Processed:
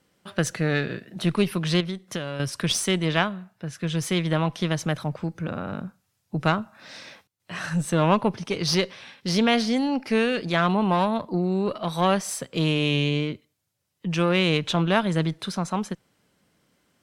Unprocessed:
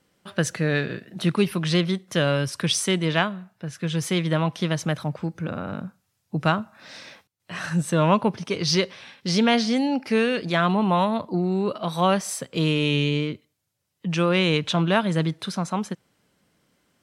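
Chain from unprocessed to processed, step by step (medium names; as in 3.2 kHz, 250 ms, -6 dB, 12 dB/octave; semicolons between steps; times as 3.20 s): single-diode clipper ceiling -17 dBFS; 1.80–2.40 s: compression 6:1, threshold -27 dBFS, peak gain reduction 10 dB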